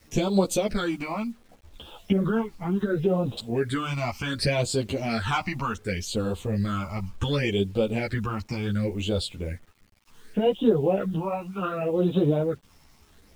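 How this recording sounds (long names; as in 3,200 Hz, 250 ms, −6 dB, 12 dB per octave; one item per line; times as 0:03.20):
phaser sweep stages 8, 0.68 Hz, lowest notch 450–1,900 Hz
a quantiser's noise floor 10 bits, dither none
a shimmering, thickened sound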